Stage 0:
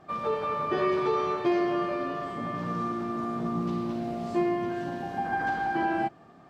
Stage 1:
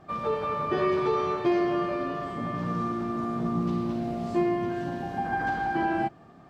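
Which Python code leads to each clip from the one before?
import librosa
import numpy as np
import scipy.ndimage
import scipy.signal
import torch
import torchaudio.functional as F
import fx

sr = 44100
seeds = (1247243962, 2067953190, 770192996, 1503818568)

y = fx.low_shelf(x, sr, hz=150.0, db=7.5)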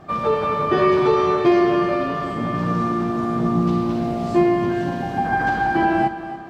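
y = fx.echo_feedback(x, sr, ms=281, feedback_pct=45, wet_db=-13)
y = F.gain(torch.from_numpy(y), 8.5).numpy()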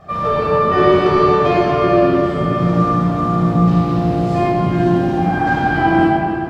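y = fx.room_shoebox(x, sr, seeds[0], volume_m3=3800.0, walls='mixed', distance_m=6.3)
y = F.gain(torch.from_numpy(y), -3.0).numpy()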